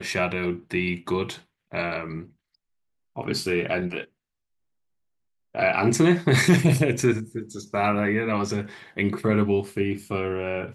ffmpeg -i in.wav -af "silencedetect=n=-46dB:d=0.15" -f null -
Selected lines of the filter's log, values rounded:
silence_start: 1.41
silence_end: 1.72 | silence_duration: 0.30
silence_start: 2.30
silence_end: 3.16 | silence_duration: 0.87
silence_start: 4.05
silence_end: 5.54 | silence_duration: 1.50